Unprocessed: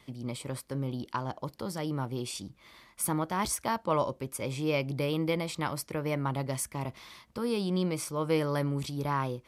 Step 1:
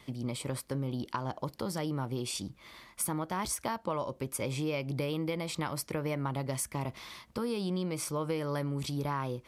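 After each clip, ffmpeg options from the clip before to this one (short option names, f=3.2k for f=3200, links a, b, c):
-af "acompressor=threshold=-33dB:ratio=6,volume=3dB"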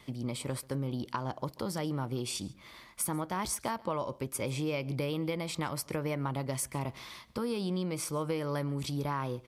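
-af "aecho=1:1:138:0.0708"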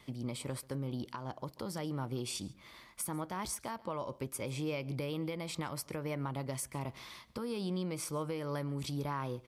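-af "alimiter=limit=-24dB:level=0:latency=1:release=262,volume=-3dB"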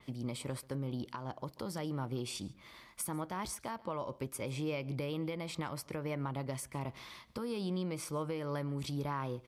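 -af "adynamicequalizer=threshold=0.00141:dfrequency=4500:dqfactor=0.7:tfrequency=4500:tqfactor=0.7:attack=5:release=100:ratio=0.375:range=2.5:mode=cutabove:tftype=highshelf"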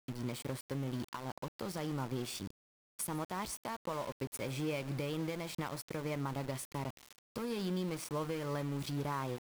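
-af "aeval=exprs='val(0)*gte(abs(val(0)),0.0075)':c=same"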